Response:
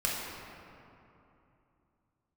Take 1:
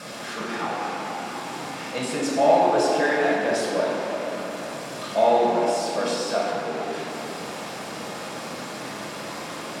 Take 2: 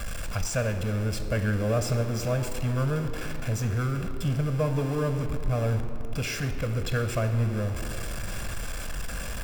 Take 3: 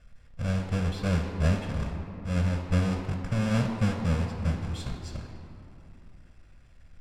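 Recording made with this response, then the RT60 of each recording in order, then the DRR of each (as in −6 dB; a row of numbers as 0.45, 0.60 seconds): 1; 2.9, 2.9, 2.9 seconds; −5.5, 6.5, 2.5 decibels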